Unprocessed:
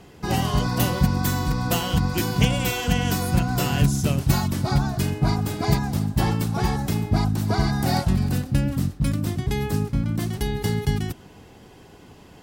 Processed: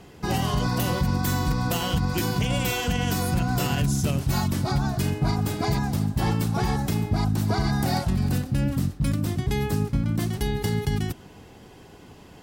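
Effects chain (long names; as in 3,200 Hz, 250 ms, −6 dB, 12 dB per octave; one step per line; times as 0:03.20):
brickwall limiter −14.5 dBFS, peak gain reduction 9.5 dB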